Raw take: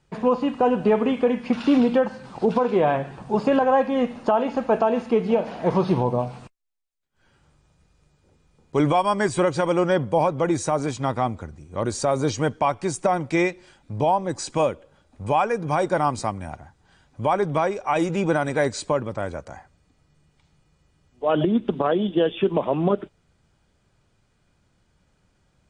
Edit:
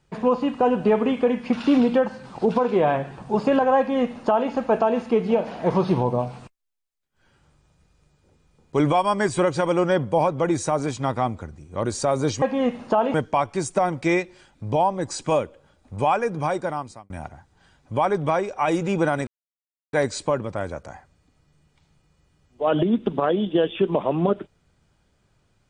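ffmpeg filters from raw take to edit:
-filter_complex "[0:a]asplit=5[s0][s1][s2][s3][s4];[s0]atrim=end=12.422[s5];[s1]atrim=start=3.778:end=4.502[s6];[s2]atrim=start=12.418:end=16.38,asetpts=PTS-STARTPTS,afade=t=out:st=3.182:d=0.78[s7];[s3]atrim=start=16.38:end=18.55,asetpts=PTS-STARTPTS,afade=t=in:d=0.004:c=hsin,afade=t=out:st=2.166:d=0.004:c=hsin,apad=pad_dur=0.66[s8];[s4]atrim=start=18.55,asetpts=PTS-STARTPTS,afade=t=in:d=0.004:c=hsin[s9];[s5][s6]acrossfade=d=0.004:c1=hsin:c2=hsin[s10];[s7][s8][s9]concat=n=3:v=0:a=1[s11];[s10][s11]acrossfade=d=0.004:c1=hsin:c2=hsin"

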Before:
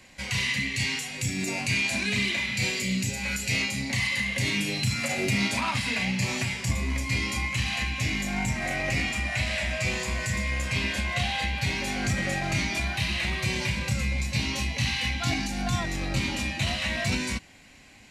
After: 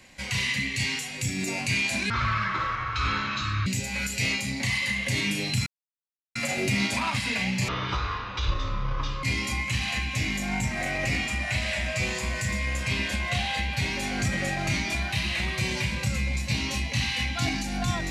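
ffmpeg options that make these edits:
-filter_complex "[0:a]asplit=6[s0][s1][s2][s3][s4][s5];[s0]atrim=end=2.104[s6];[s1]atrim=start=2.1:end=2.96,asetpts=PTS-STARTPTS,asetrate=24255,aresample=44100,atrim=end_sample=68956,asetpts=PTS-STARTPTS[s7];[s2]atrim=start=2.956:end=4.96,asetpts=PTS-STARTPTS,afade=t=out:st=2:d=0.004:c=hsin,apad=pad_dur=0.69[s8];[s3]atrim=start=4.96:end=6.294,asetpts=PTS-STARTPTS,afade=t=in:d=0.004:c=hsin[s9];[s4]atrim=start=6.29:end=7.08,asetpts=PTS-STARTPTS,asetrate=22491,aresample=44100[s10];[s5]atrim=start=7.076[s11];[s6][s7]acrossfade=d=0.004:c1=hsin:c2=hsin[s12];[s8][s9]concat=n=2:v=0:a=1[s13];[s12][s13]acrossfade=d=0.004:c1=hsin:c2=hsin[s14];[s14][s10]acrossfade=d=0.004:c1=hsin:c2=hsin[s15];[s15][s11]acrossfade=d=0.004:c1=hsin:c2=hsin"

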